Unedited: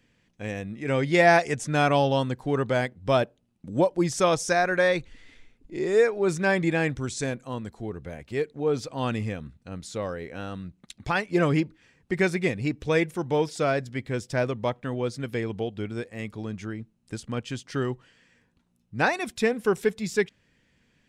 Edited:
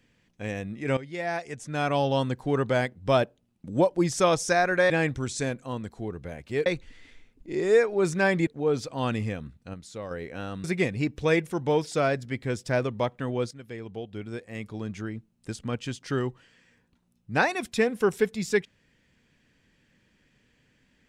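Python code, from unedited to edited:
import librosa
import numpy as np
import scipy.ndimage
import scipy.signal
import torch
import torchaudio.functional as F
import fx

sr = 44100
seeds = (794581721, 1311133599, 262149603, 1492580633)

y = fx.edit(x, sr, fx.fade_in_from(start_s=0.97, length_s=1.29, curve='qua', floor_db=-15.0),
    fx.move(start_s=6.71, length_s=1.76, to_s=4.9),
    fx.clip_gain(start_s=9.74, length_s=0.37, db=-6.0),
    fx.cut(start_s=10.64, length_s=1.64),
    fx.fade_in_from(start_s=15.15, length_s=1.42, floor_db=-14.0), tone=tone)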